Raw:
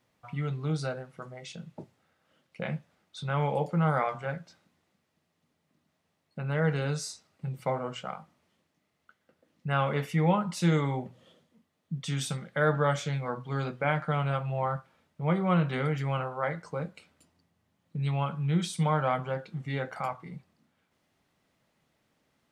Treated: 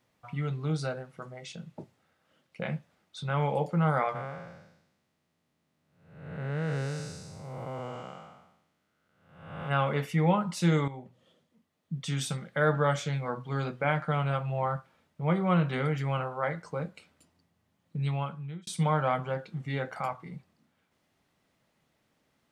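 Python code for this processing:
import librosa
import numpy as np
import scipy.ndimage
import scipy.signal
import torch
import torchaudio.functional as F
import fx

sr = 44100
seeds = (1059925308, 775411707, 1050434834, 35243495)

y = fx.spec_blur(x, sr, span_ms=447.0, at=(4.14, 9.69), fade=0.02)
y = fx.edit(y, sr, fx.fade_in_from(start_s=10.88, length_s=1.16, floor_db=-12.0),
    fx.fade_out_span(start_s=18.04, length_s=0.63), tone=tone)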